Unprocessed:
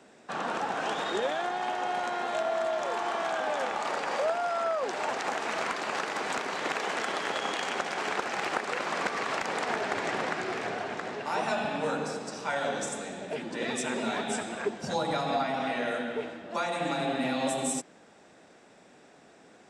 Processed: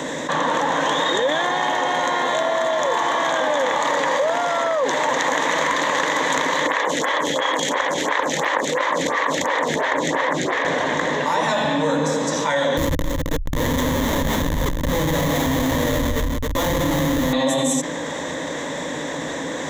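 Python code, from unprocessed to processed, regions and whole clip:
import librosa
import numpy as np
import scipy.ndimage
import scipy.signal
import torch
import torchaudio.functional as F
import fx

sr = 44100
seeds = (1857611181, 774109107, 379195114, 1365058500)

y = fx.chain(x, sr, fx.highpass(hz=41.0, slope=12),
    fx.stagger_phaser(hz=2.9), at=(6.67, 10.65))
y = fx.chain(y, sr, fx.schmitt(flips_db=-29.0),
    fx.echo_single(ms=268, db=-8.5), at=(12.77, 17.33))
y = fx.ripple_eq(y, sr, per_octave=1.1, db=12)
y = fx.env_flatten(y, sr, amount_pct=70)
y = F.gain(torch.from_numpy(y), 4.0).numpy()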